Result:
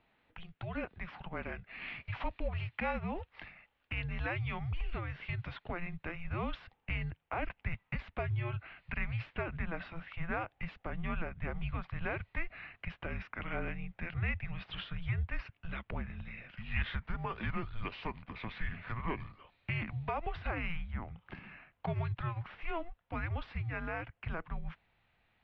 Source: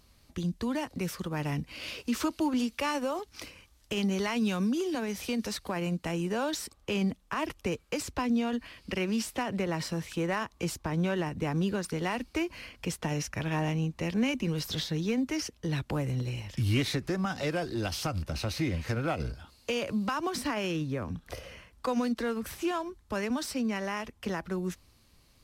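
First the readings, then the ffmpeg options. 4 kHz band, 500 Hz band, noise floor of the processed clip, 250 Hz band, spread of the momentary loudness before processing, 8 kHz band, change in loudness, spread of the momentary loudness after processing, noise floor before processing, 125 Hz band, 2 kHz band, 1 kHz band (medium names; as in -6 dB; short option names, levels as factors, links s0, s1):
-13.0 dB, -10.5 dB, -77 dBFS, -14.0 dB, 7 LU, under -40 dB, -8.0 dB, 9 LU, -63 dBFS, -4.5 dB, -2.5 dB, -6.0 dB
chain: -af "asubboost=boost=11.5:cutoff=170,highpass=f=370:t=q:w=0.5412,highpass=f=370:t=q:w=1.307,lowpass=f=3200:t=q:w=0.5176,lowpass=f=3200:t=q:w=0.7071,lowpass=f=3200:t=q:w=1.932,afreqshift=-340,volume=0.841"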